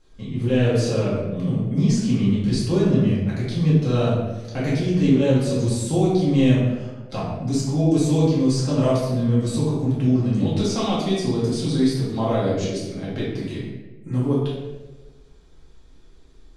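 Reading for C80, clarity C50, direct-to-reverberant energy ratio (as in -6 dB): 3.0 dB, -0.5 dB, -9.0 dB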